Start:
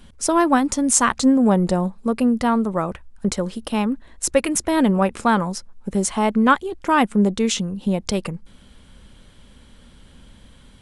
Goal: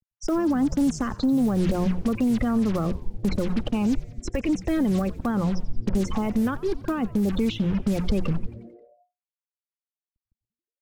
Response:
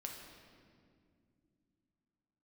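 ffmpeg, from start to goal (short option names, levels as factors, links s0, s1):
-filter_complex "[0:a]bandreject=f=960:w=7.4,afftfilt=real='re*gte(hypot(re,im),0.0708)':imag='im*gte(hypot(re,im),0.0708)':win_size=1024:overlap=0.75,lowpass=f=3800:w=0.5412,lowpass=f=3800:w=1.3066,bandreject=f=60:t=h:w=6,bandreject=f=120:t=h:w=6,bandreject=f=180:t=h:w=6,acrossover=split=1300[s0][s1];[s0]acrusher=bits=5:mix=0:aa=0.5[s2];[s2][s1]amix=inputs=2:normalize=0,acompressor=threshold=0.141:ratio=12,alimiter=limit=0.119:level=0:latency=1:release=20,acrossover=split=370|990[s3][s4][s5];[s3]acompressor=threshold=0.0501:ratio=4[s6];[s4]acompressor=threshold=0.00631:ratio=4[s7];[s5]acompressor=threshold=0.00562:ratio=4[s8];[s6][s7][s8]amix=inputs=3:normalize=0,asubboost=boost=2.5:cutoff=91,asoftclip=type=tanh:threshold=0.0944,asplit=2[s9][s10];[s10]asplit=6[s11][s12][s13][s14][s15][s16];[s11]adelay=89,afreqshift=-120,volume=0.133[s17];[s12]adelay=178,afreqshift=-240,volume=0.0804[s18];[s13]adelay=267,afreqshift=-360,volume=0.0479[s19];[s14]adelay=356,afreqshift=-480,volume=0.0288[s20];[s15]adelay=445,afreqshift=-600,volume=0.0174[s21];[s16]adelay=534,afreqshift=-720,volume=0.0104[s22];[s17][s18][s19][s20][s21][s22]amix=inputs=6:normalize=0[s23];[s9][s23]amix=inputs=2:normalize=0,volume=2.51"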